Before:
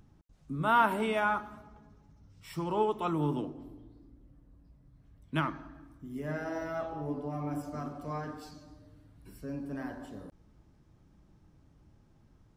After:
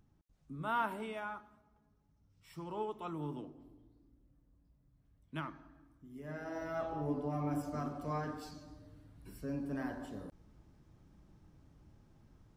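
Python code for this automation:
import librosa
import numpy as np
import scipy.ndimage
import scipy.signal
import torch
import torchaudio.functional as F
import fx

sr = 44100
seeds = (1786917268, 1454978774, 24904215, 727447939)

y = fx.gain(x, sr, db=fx.line((0.85, -9.5), (1.61, -17.0), (2.63, -10.5), (6.17, -10.5), (6.95, -0.5)))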